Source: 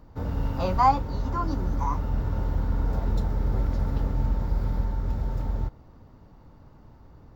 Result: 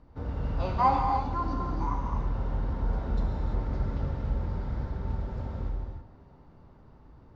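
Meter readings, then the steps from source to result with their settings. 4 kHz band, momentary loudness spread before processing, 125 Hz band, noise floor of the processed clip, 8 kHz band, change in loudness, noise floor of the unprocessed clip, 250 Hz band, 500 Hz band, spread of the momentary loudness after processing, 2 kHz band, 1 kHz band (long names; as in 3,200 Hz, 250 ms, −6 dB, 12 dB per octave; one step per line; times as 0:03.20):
−4.5 dB, 9 LU, −4.0 dB, −55 dBFS, can't be measured, −3.5 dB, −51 dBFS, −3.5 dB, −3.0 dB, 10 LU, −2.5 dB, −2.0 dB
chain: low-pass filter 4,500 Hz 12 dB per octave
tape delay 149 ms, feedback 85%, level −17.5 dB, low-pass 3,000 Hz
reverb whose tail is shaped and stops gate 360 ms flat, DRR 0 dB
level −5.5 dB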